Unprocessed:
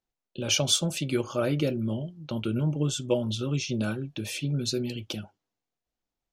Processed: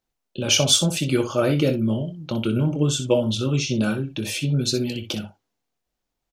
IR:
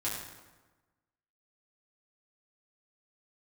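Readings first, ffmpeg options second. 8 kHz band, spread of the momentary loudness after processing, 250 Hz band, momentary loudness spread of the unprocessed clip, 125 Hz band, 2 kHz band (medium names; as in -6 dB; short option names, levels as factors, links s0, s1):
+6.5 dB, 11 LU, +6.5 dB, 10 LU, +6.0 dB, +6.5 dB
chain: -af "aecho=1:1:23|62:0.282|0.282,volume=2"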